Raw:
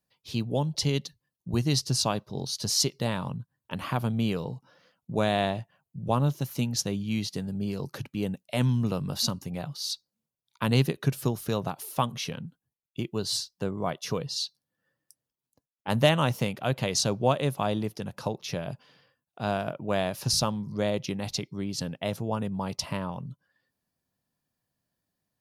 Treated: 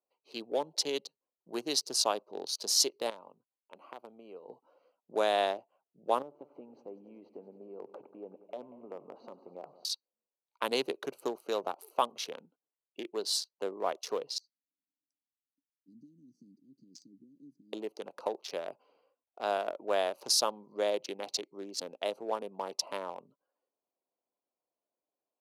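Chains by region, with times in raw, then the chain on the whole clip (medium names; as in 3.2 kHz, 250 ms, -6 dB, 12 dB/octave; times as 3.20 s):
3.10–4.49 s: gate -31 dBFS, range -11 dB + compression 10:1, threshold -35 dBFS
6.22–9.85 s: low-pass 1.2 kHz + compression 4:1, threshold -33 dBFS + multi-head delay 94 ms, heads first and second, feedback 66%, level -18.5 dB
14.38–17.73 s: compression, threshold -29 dBFS + Chebyshev band-stop 290–4900 Hz, order 5 + distance through air 110 m
whole clip: local Wiener filter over 25 samples; high-pass 370 Hz 24 dB/octave; dynamic bell 2.1 kHz, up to -4 dB, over -45 dBFS, Q 1.2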